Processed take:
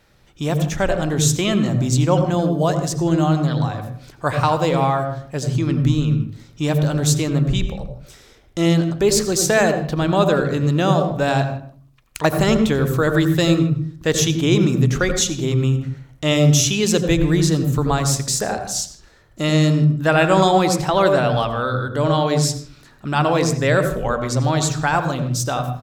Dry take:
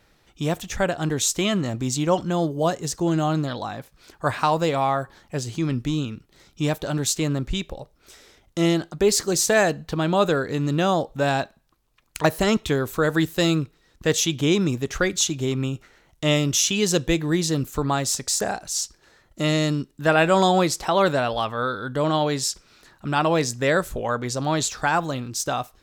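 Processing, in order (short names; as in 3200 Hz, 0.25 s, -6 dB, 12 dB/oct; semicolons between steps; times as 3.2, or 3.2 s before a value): speakerphone echo 0.16 s, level -16 dB; on a send at -8 dB: reverb, pre-delay 76 ms; on the sum: gain +2 dB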